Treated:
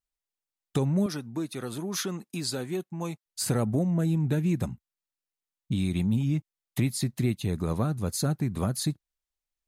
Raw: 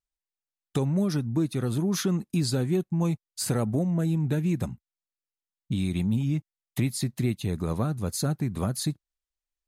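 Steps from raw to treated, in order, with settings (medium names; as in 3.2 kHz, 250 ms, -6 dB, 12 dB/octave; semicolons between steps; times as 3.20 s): 1.06–3.26 s: high-pass 510 Hz 6 dB/octave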